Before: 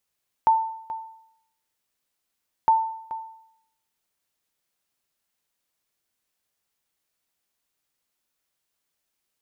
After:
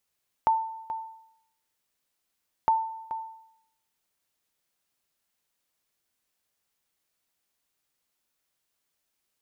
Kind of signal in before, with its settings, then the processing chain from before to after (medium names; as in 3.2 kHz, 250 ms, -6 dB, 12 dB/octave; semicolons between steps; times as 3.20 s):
sonar ping 893 Hz, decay 0.72 s, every 2.21 s, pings 2, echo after 0.43 s, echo -15 dB -11.5 dBFS
dynamic bell 1.2 kHz, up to -6 dB, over -32 dBFS, Q 0.86